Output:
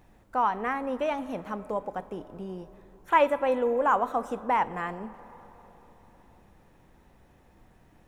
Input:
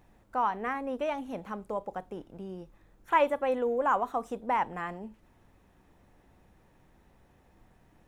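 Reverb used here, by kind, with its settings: algorithmic reverb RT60 4.3 s, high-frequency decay 0.4×, pre-delay 25 ms, DRR 16.5 dB; trim +3 dB

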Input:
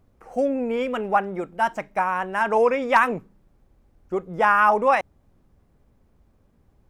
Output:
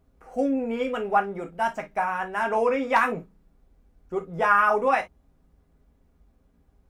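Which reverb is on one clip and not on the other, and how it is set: gated-style reverb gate 80 ms falling, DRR 2.5 dB; trim -4.5 dB

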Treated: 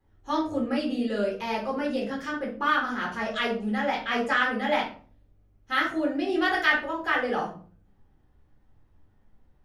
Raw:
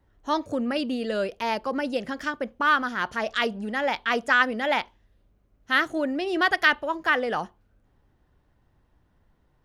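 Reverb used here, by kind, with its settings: simulated room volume 320 m³, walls furnished, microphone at 4 m; trim -9 dB

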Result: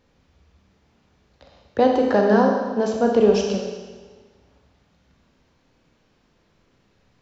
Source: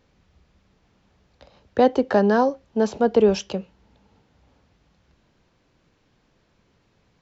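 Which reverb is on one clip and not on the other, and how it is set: Schroeder reverb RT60 1.4 s, combs from 27 ms, DRR 1 dB; trim -1 dB

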